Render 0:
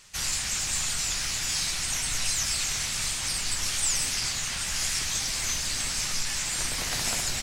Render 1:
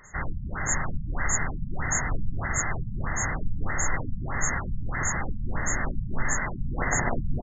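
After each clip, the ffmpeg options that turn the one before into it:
-af "aecho=1:1:460:0.531,afftfilt=real='re*(1-between(b*sr/4096,2100,6400))':imag='im*(1-between(b*sr/4096,2100,6400))':win_size=4096:overlap=0.75,afftfilt=real='re*lt(b*sr/1024,220*pow(7600/220,0.5+0.5*sin(2*PI*1.6*pts/sr)))':imag='im*lt(b*sr/1024,220*pow(7600/220,0.5+0.5*sin(2*PI*1.6*pts/sr)))':win_size=1024:overlap=0.75,volume=9dB"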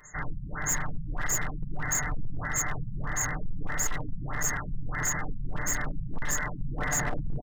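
-af "highshelf=f=4.4k:g=8,aecho=1:1:6.7:0.59,volume=18.5dB,asoftclip=hard,volume=-18.5dB,volume=-4.5dB"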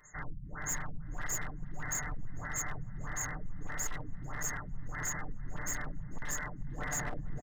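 -filter_complex "[0:a]asplit=2[a][b];[b]adelay=449,lowpass=f=2.9k:p=1,volume=-20dB,asplit=2[c][d];[d]adelay=449,lowpass=f=2.9k:p=1,volume=0.46,asplit=2[e][f];[f]adelay=449,lowpass=f=2.9k:p=1,volume=0.46[g];[a][c][e][g]amix=inputs=4:normalize=0,volume=-7.5dB"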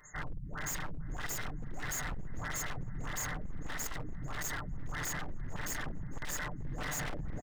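-af "aeval=exprs='0.02*(abs(mod(val(0)/0.02+3,4)-2)-1)':c=same,volume=2.5dB"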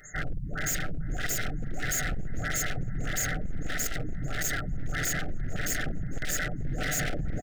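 -af "asuperstop=centerf=1000:order=8:qfactor=1.9,volume=8dB"

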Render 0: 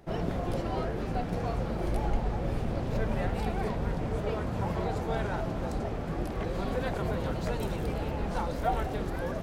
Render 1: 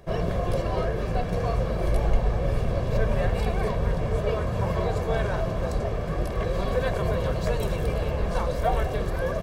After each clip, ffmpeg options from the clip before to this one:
-af "aecho=1:1:1.8:0.56,volume=4dB"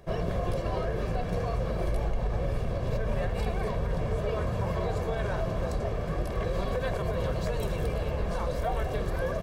-af "alimiter=limit=-17.5dB:level=0:latency=1:release=80,volume=-2.5dB"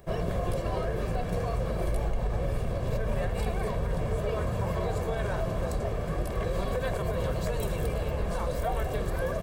-af "aexciter=amount=1.3:drive=8.4:freq=7.5k"

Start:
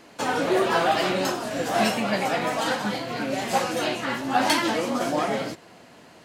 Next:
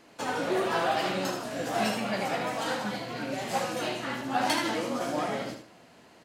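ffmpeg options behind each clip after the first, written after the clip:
-af "aecho=1:1:75|150|225:0.447|0.125|0.035,volume=-6.5dB"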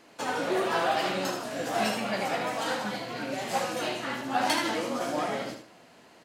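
-af "lowshelf=f=170:g=-6,volume=1dB"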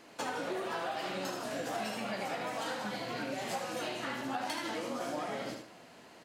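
-af "acompressor=threshold=-34dB:ratio=6"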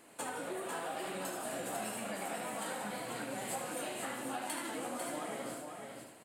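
-filter_complex "[0:a]highshelf=f=7k:t=q:w=3:g=7.5,asplit=2[a][b];[b]aecho=0:1:497:0.531[c];[a][c]amix=inputs=2:normalize=0,volume=-4dB"

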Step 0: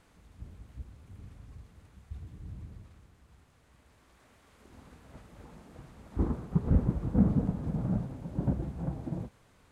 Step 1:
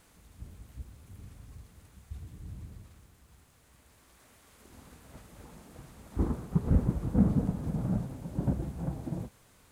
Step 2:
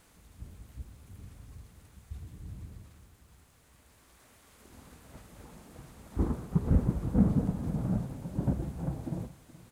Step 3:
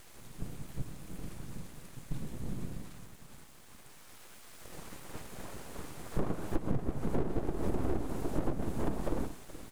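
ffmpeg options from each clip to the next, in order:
-af "aemphasis=mode=production:type=50kf"
-af "aecho=1:1:423:0.119"
-af "acompressor=threshold=-33dB:ratio=20,aeval=exprs='abs(val(0))':c=same,volume=8.5dB"

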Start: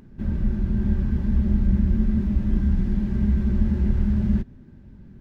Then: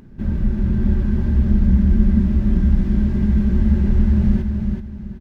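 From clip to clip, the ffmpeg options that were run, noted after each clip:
-af "aecho=1:1:379|758|1137|1516:0.562|0.169|0.0506|0.0152,volume=4dB"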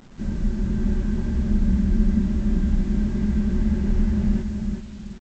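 -af "equalizer=f=82:t=o:w=1.3:g=-7.5,aresample=16000,acrusher=bits=7:mix=0:aa=0.000001,aresample=44100,volume=-2.5dB"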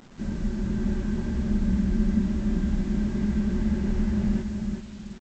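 -af "lowshelf=f=130:g=-7"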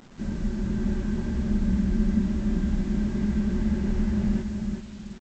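-af anull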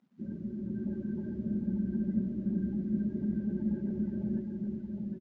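-filter_complex "[0:a]highpass=150,lowpass=5.2k,afftdn=nr=22:nf=-35,asplit=2[a][b];[b]aecho=0:1:764:0.531[c];[a][c]amix=inputs=2:normalize=0,volume=-6dB"

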